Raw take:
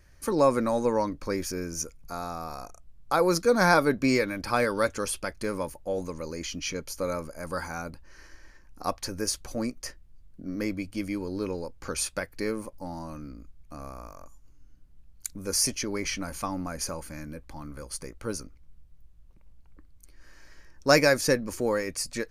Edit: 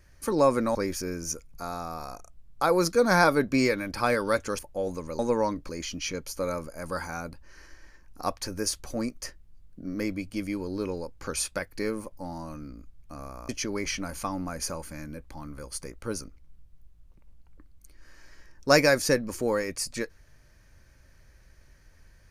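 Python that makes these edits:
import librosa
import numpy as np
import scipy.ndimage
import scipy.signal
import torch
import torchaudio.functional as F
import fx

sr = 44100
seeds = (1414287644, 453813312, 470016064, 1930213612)

y = fx.edit(x, sr, fx.move(start_s=0.75, length_s=0.5, to_s=6.3),
    fx.cut(start_s=5.09, length_s=0.61),
    fx.cut(start_s=14.1, length_s=1.58), tone=tone)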